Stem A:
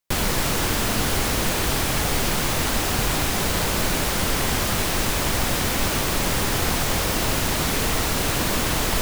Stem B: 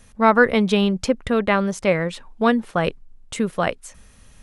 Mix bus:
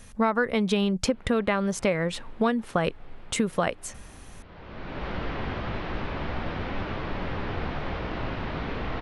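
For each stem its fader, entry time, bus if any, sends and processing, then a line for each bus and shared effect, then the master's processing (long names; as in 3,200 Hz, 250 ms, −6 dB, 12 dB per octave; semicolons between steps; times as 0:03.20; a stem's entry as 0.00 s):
−3.0 dB, 0.95 s, no send, Gaussian smoothing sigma 3 samples; flanger 0.33 Hz, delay 9.1 ms, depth 9.7 ms, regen −44%; automatic ducking −19 dB, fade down 1.25 s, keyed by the second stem
+2.5 dB, 0.00 s, no send, no processing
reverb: not used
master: downward compressor 6 to 1, threshold −21 dBFS, peak gain reduction 13.5 dB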